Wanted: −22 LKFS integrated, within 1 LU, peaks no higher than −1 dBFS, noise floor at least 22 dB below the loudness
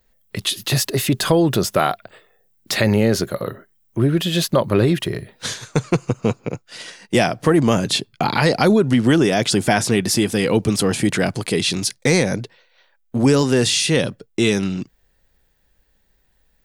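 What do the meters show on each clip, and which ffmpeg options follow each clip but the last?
integrated loudness −18.5 LKFS; sample peak −1.5 dBFS; target loudness −22.0 LKFS
→ -af "volume=-3.5dB"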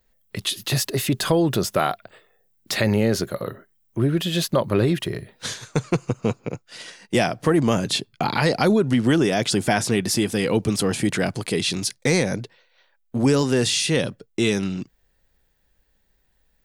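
integrated loudness −22.0 LKFS; sample peak −5.0 dBFS; background noise floor −66 dBFS

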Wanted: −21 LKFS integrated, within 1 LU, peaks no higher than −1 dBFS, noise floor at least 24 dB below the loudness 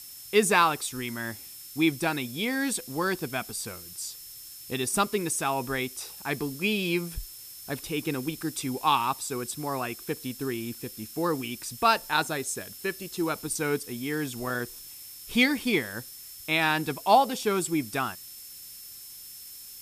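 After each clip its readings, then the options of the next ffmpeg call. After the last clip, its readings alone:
interfering tone 5,300 Hz; level of the tone −50 dBFS; background noise floor −45 dBFS; target noise floor −52 dBFS; integrated loudness −28.0 LKFS; sample peak −7.0 dBFS; target loudness −21.0 LKFS
→ -af "bandreject=frequency=5300:width=30"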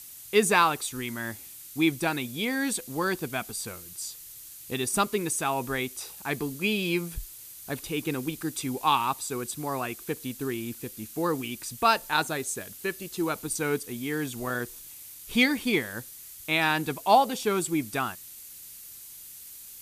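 interfering tone none found; background noise floor −46 dBFS; target noise floor −52 dBFS
→ -af "afftdn=noise_reduction=6:noise_floor=-46"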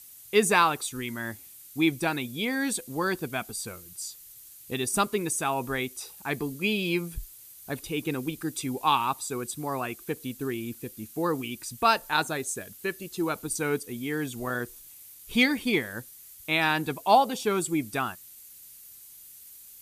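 background noise floor −49 dBFS; target noise floor −53 dBFS
→ -af "afftdn=noise_reduction=6:noise_floor=-49"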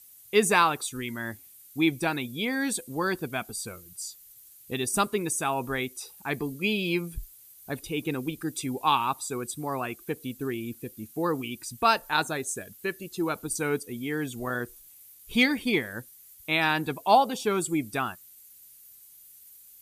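background noise floor −53 dBFS; integrated loudness −28.5 LKFS; sample peak −7.0 dBFS; target loudness −21.0 LKFS
→ -af "volume=7.5dB,alimiter=limit=-1dB:level=0:latency=1"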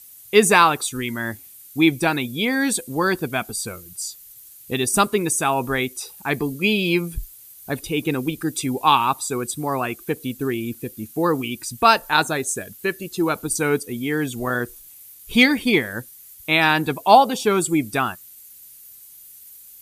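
integrated loudness −21.0 LKFS; sample peak −1.0 dBFS; background noise floor −45 dBFS

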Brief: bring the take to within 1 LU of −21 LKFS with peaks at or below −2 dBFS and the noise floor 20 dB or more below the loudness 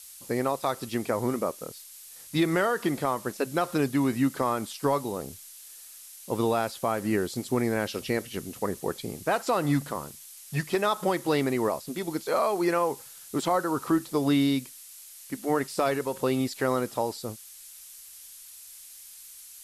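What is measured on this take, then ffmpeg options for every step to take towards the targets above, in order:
background noise floor −47 dBFS; target noise floor −48 dBFS; integrated loudness −28.0 LKFS; sample peak −14.0 dBFS; target loudness −21.0 LKFS
→ -af "afftdn=noise_reduction=6:noise_floor=-47"
-af "volume=7dB"

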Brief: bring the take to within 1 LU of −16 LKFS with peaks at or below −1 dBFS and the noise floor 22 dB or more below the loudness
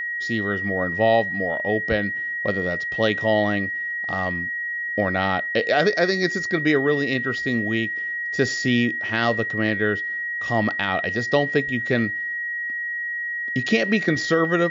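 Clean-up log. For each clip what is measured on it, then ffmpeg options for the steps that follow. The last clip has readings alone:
interfering tone 1,900 Hz; level of the tone −25 dBFS; integrated loudness −22.5 LKFS; sample peak −6.5 dBFS; target loudness −16.0 LKFS
→ -af "bandreject=frequency=1900:width=30"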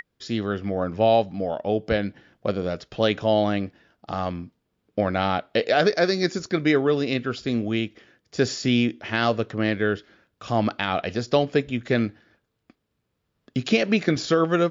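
interfering tone none found; integrated loudness −24.0 LKFS; sample peak −7.5 dBFS; target loudness −16.0 LKFS
→ -af "volume=8dB,alimiter=limit=-1dB:level=0:latency=1"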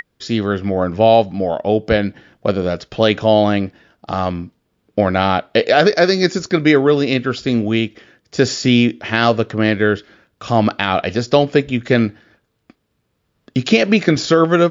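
integrated loudness −16.5 LKFS; sample peak −1.0 dBFS; background noise floor −68 dBFS

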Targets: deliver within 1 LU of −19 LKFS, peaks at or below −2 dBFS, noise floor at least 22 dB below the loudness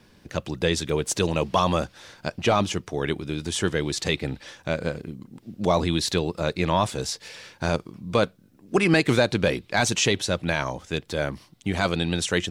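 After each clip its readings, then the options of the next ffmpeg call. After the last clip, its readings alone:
integrated loudness −25.0 LKFS; sample peak −9.0 dBFS; target loudness −19.0 LKFS
→ -af "volume=6dB"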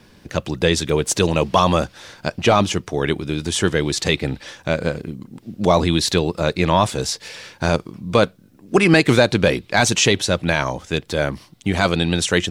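integrated loudness −19.0 LKFS; sample peak −3.0 dBFS; background noise floor −51 dBFS

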